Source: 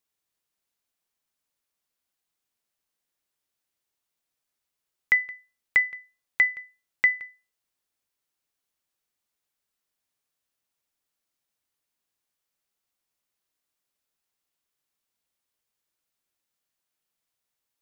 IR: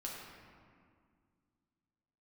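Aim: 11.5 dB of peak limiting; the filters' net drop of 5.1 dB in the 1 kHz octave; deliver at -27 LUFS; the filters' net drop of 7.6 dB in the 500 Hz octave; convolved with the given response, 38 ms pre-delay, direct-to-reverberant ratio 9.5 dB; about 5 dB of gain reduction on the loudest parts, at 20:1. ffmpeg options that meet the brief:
-filter_complex "[0:a]equalizer=f=500:t=o:g=-8.5,equalizer=f=1000:t=o:g=-5,acompressor=threshold=0.0891:ratio=20,alimiter=limit=0.075:level=0:latency=1,asplit=2[s0][s1];[1:a]atrim=start_sample=2205,adelay=38[s2];[s1][s2]afir=irnorm=-1:irlink=0,volume=0.355[s3];[s0][s3]amix=inputs=2:normalize=0,volume=2.11"

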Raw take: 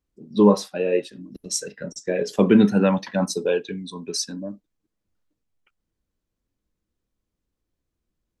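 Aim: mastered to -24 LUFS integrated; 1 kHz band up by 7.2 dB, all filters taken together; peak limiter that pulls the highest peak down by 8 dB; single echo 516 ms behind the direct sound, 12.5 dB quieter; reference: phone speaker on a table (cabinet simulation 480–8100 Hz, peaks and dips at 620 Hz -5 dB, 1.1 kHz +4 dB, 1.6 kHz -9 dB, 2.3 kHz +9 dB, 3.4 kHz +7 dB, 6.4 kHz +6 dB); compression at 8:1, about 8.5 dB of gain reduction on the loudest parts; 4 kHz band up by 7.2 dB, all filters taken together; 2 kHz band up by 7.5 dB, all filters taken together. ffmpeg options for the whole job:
-af "equalizer=f=1000:t=o:g=5.5,equalizer=f=2000:t=o:g=4.5,equalizer=f=4000:t=o:g=4,acompressor=threshold=0.126:ratio=8,alimiter=limit=0.178:level=0:latency=1,highpass=f=480:w=0.5412,highpass=f=480:w=1.3066,equalizer=f=620:t=q:w=4:g=-5,equalizer=f=1100:t=q:w=4:g=4,equalizer=f=1600:t=q:w=4:g=-9,equalizer=f=2300:t=q:w=4:g=9,equalizer=f=3400:t=q:w=4:g=7,equalizer=f=6400:t=q:w=4:g=6,lowpass=f=8100:w=0.5412,lowpass=f=8100:w=1.3066,aecho=1:1:516:0.237,volume=1.78"

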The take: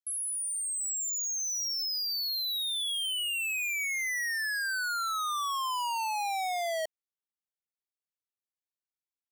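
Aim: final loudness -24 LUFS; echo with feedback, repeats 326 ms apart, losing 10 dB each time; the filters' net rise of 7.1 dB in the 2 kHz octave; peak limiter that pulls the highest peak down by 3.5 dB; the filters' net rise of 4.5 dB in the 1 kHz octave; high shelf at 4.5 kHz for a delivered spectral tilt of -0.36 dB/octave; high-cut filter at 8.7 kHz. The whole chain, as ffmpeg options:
-af "lowpass=8700,equalizer=f=1000:t=o:g=3.5,equalizer=f=2000:t=o:g=6.5,highshelf=f=4500:g=7,alimiter=level_in=1.12:limit=0.0631:level=0:latency=1,volume=0.891,aecho=1:1:326|652|978|1304:0.316|0.101|0.0324|0.0104,volume=1.19"

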